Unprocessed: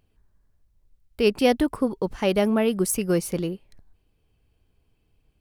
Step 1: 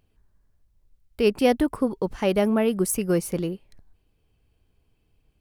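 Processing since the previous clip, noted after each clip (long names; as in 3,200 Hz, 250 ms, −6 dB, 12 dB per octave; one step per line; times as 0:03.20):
dynamic equaliser 4,100 Hz, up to −4 dB, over −43 dBFS, Q 0.96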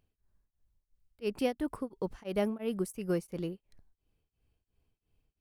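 tremolo along a rectified sine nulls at 2.9 Hz
level −8 dB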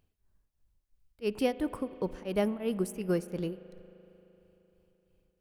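spring reverb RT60 3.7 s, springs 38 ms, chirp 25 ms, DRR 15 dB
level +2 dB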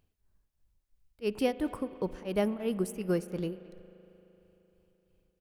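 far-end echo of a speakerphone 220 ms, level −19 dB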